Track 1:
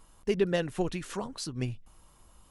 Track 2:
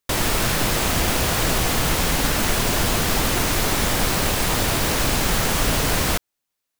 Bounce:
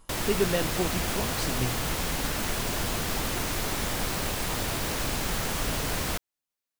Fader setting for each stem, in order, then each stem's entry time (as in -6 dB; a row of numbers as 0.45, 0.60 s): +0.5, -9.0 dB; 0.00, 0.00 s